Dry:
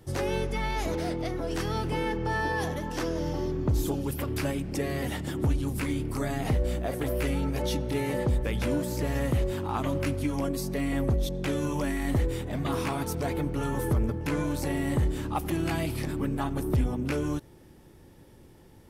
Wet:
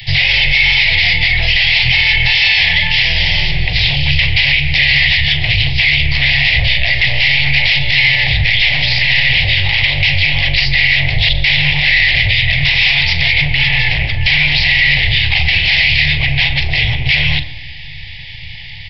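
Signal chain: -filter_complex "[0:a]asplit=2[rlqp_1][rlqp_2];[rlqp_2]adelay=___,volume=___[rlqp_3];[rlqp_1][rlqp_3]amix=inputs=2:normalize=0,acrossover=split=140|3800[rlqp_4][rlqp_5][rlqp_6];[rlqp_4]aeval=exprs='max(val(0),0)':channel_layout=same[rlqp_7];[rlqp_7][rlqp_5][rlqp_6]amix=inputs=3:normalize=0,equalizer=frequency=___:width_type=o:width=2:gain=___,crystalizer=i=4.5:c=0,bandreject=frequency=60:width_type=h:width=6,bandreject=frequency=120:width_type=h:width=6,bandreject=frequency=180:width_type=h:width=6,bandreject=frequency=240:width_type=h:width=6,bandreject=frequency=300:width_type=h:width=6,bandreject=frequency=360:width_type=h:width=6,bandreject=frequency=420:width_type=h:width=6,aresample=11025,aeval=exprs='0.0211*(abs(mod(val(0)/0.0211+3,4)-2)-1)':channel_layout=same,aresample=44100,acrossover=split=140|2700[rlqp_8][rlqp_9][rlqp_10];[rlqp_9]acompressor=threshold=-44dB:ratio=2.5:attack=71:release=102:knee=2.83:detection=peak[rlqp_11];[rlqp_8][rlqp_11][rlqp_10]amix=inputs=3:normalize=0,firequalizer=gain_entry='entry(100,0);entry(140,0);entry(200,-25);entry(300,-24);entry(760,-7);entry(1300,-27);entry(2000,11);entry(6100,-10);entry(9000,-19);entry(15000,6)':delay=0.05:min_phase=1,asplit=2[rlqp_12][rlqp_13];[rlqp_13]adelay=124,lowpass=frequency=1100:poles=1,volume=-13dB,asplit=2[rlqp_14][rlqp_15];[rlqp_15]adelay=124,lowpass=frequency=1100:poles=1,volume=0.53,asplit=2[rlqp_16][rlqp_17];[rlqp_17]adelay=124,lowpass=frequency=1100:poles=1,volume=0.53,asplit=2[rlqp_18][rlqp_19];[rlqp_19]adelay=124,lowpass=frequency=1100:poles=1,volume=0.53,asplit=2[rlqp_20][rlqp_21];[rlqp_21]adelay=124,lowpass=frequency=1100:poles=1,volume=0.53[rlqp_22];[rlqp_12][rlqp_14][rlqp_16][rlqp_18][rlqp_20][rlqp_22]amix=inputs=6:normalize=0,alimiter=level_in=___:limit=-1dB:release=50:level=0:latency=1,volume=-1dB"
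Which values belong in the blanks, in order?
41, -12.5dB, 450, -11.5, 28dB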